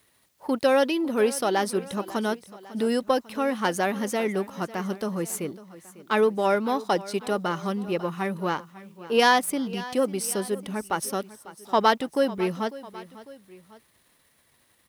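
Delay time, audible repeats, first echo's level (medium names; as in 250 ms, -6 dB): 549 ms, 2, -17.5 dB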